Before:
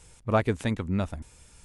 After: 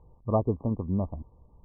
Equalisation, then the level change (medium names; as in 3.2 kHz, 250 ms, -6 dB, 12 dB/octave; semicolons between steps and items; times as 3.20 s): brick-wall FIR low-pass 1.2 kHz; distance through air 410 m; 0.0 dB